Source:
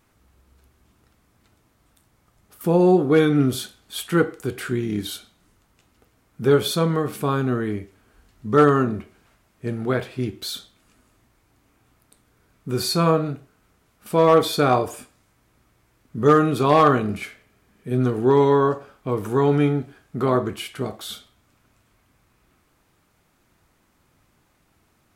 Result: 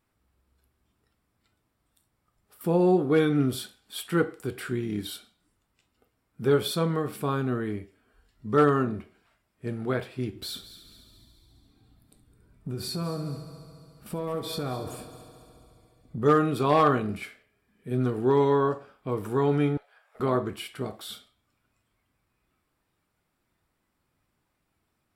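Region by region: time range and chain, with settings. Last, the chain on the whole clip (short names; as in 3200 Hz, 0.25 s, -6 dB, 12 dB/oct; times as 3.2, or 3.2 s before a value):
10.35–16.22 low shelf 300 Hz +11 dB + compressor 4:1, threshold -25 dBFS + multi-head echo 70 ms, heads first and third, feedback 68%, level -15 dB
19.77–20.2 elliptic high-pass 510 Hz + tube stage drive 37 dB, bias 0.5 + three-band squash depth 100%
whole clip: notch 6400 Hz, Q 6.6; spectral noise reduction 7 dB; gain -5.5 dB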